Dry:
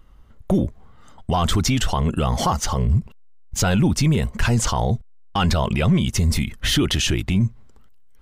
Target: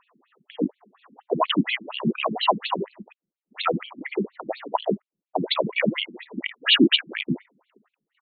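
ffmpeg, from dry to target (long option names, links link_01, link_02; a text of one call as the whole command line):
ffmpeg -i in.wav -af "asetrate=40440,aresample=44100,atempo=1.09051,afftfilt=real='re*between(b*sr/1024,240*pow(3200/240,0.5+0.5*sin(2*PI*4.2*pts/sr))/1.41,240*pow(3200/240,0.5+0.5*sin(2*PI*4.2*pts/sr))*1.41)':imag='im*between(b*sr/1024,240*pow(3200/240,0.5+0.5*sin(2*PI*4.2*pts/sr))/1.41,240*pow(3200/240,0.5+0.5*sin(2*PI*4.2*pts/sr))*1.41)':win_size=1024:overlap=0.75,volume=7dB" out.wav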